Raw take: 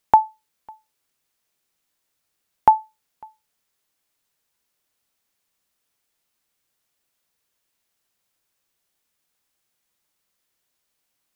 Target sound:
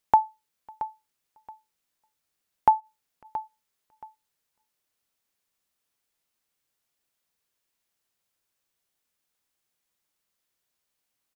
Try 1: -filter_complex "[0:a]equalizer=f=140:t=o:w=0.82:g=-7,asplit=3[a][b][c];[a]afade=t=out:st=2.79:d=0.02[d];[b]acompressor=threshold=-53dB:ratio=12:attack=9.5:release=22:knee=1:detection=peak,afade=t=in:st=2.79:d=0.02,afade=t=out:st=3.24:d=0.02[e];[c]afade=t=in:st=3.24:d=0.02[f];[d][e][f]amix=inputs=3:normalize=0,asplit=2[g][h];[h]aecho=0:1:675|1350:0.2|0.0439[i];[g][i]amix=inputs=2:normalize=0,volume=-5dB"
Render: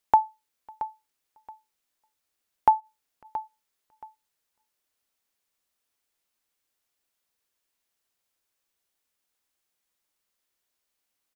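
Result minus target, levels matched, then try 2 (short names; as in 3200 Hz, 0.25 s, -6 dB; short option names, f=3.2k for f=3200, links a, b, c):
125 Hz band -4.0 dB
-filter_complex "[0:a]asplit=3[a][b][c];[a]afade=t=out:st=2.79:d=0.02[d];[b]acompressor=threshold=-53dB:ratio=12:attack=9.5:release=22:knee=1:detection=peak,afade=t=in:st=2.79:d=0.02,afade=t=out:st=3.24:d=0.02[e];[c]afade=t=in:st=3.24:d=0.02[f];[d][e][f]amix=inputs=3:normalize=0,asplit=2[g][h];[h]aecho=0:1:675|1350:0.2|0.0439[i];[g][i]amix=inputs=2:normalize=0,volume=-5dB"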